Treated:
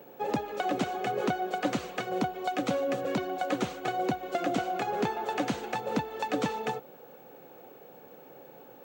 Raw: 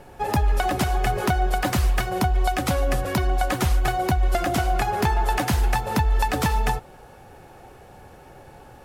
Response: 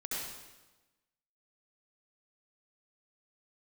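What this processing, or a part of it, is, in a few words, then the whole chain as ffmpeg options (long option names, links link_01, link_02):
old television with a line whistle: -af "highpass=frequency=160:width=0.5412,highpass=frequency=160:width=1.3066,equalizer=frequency=280:width_type=q:width=4:gain=5,equalizer=frequency=490:width_type=q:width=4:gain=9,equalizer=frequency=970:width_type=q:width=4:gain=-4,equalizer=frequency=1800:width_type=q:width=4:gain=-4,equalizer=frequency=5100:width_type=q:width=4:gain=-7,lowpass=frequency=6800:width=0.5412,lowpass=frequency=6800:width=1.3066,aeval=exprs='val(0)+0.00355*sin(2*PI*15734*n/s)':channel_layout=same,volume=-6.5dB"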